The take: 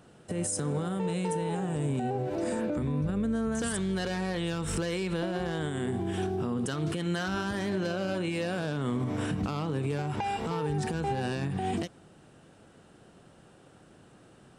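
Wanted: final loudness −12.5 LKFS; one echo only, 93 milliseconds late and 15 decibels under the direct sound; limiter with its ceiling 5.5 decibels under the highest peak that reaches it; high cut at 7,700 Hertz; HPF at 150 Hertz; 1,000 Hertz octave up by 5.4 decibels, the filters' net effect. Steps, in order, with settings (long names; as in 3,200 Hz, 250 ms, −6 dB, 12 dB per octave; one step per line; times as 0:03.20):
high-pass filter 150 Hz
low-pass filter 7,700 Hz
parametric band 1,000 Hz +7.5 dB
brickwall limiter −22.5 dBFS
single-tap delay 93 ms −15 dB
level +19.5 dB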